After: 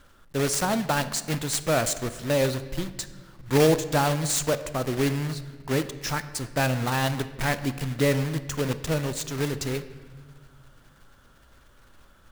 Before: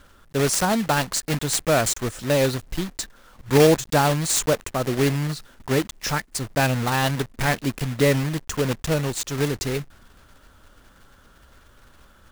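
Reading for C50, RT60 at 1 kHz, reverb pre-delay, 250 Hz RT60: 13.5 dB, 1.3 s, 3 ms, 2.1 s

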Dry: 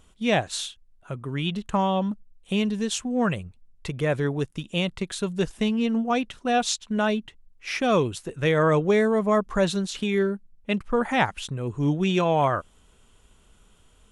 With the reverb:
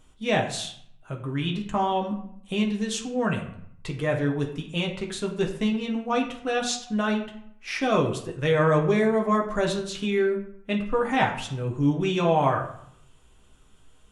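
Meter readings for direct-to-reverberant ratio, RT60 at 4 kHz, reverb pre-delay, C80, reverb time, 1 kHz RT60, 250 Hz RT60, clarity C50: 0.5 dB, 0.45 s, 6 ms, 11.5 dB, 0.70 s, 0.70 s, 0.80 s, 8.5 dB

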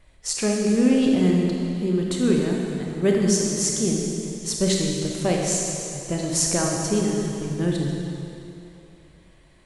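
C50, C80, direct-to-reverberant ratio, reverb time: 0.0 dB, 1.5 dB, -1.0 dB, 2.8 s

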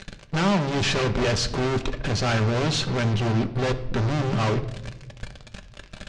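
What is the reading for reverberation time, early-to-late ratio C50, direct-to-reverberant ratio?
1.0 s, 14.0 dB, 6.5 dB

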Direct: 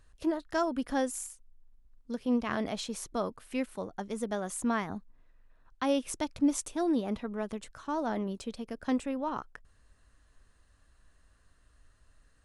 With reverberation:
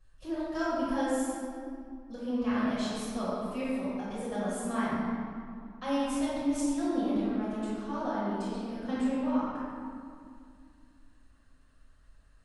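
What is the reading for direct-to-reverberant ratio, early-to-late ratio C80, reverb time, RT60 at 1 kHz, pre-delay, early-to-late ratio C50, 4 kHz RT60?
-13.0 dB, -1.5 dB, 2.2 s, 2.2 s, 5 ms, -4.5 dB, 1.4 s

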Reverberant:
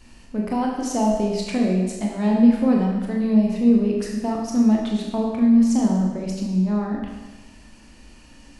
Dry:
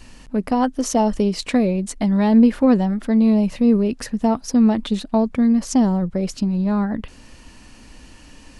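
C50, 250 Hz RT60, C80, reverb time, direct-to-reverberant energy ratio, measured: 2.0 dB, 1.2 s, 4.5 dB, 1.2 s, -1.5 dB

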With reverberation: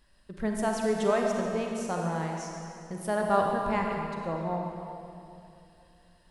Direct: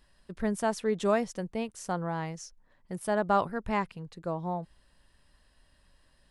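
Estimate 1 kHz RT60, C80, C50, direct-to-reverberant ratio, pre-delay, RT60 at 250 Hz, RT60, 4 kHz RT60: 2.7 s, 2.0 dB, 1.0 dB, 0.5 dB, 34 ms, 3.0 s, 2.7 s, 2.3 s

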